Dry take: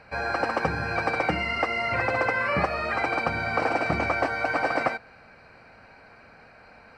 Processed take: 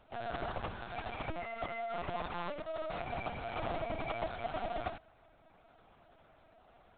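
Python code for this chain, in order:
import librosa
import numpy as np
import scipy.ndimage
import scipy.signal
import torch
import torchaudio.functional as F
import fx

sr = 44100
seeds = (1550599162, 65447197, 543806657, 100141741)

y = scipy.signal.medfilt(x, 25)
y = fx.low_shelf(y, sr, hz=210.0, db=-11.5)
y = y + 0.77 * np.pad(y, (int(3.0 * sr / 1000.0), 0))[:len(y)]
y = fx.dynamic_eq(y, sr, hz=410.0, q=0.94, threshold_db=-44.0, ratio=4.0, max_db=-6, at=(0.69, 1.25))
y = fx.over_compress(y, sr, threshold_db=-31.0, ratio=-0.5, at=(2.21, 3.06), fade=0.02)
y = 10.0 ** (-21.5 / 20.0) * np.tanh(y / 10.0 ** (-21.5 / 20.0))
y = fx.room_flutter(y, sr, wall_m=7.1, rt60_s=0.22, at=(3.64, 4.18), fade=0.02)
y = fx.lpc_vocoder(y, sr, seeds[0], excitation='pitch_kept', order=10)
y = y * 10.0 ** (-7.5 / 20.0)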